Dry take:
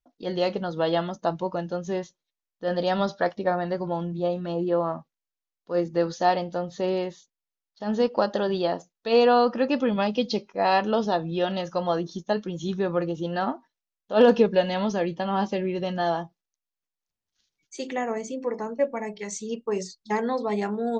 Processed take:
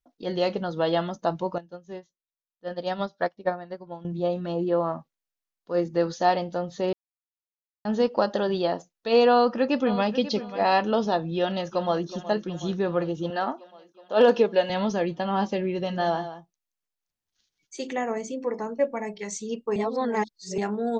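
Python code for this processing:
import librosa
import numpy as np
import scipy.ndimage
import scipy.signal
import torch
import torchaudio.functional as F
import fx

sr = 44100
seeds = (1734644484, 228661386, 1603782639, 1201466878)

y = fx.upward_expand(x, sr, threshold_db=-33.0, expansion=2.5, at=(1.58, 4.05))
y = fx.echo_throw(y, sr, start_s=9.32, length_s=0.8, ms=540, feedback_pct=25, wet_db=-13.0)
y = fx.echo_throw(y, sr, start_s=11.35, length_s=0.72, ms=370, feedback_pct=75, wet_db=-15.0)
y = fx.highpass(y, sr, hz=290.0, slope=12, at=(13.3, 14.7))
y = fx.echo_single(y, sr, ms=175, db=-12.0, at=(15.69, 17.93))
y = fx.edit(y, sr, fx.silence(start_s=6.93, length_s=0.92),
    fx.reverse_span(start_s=19.76, length_s=0.82), tone=tone)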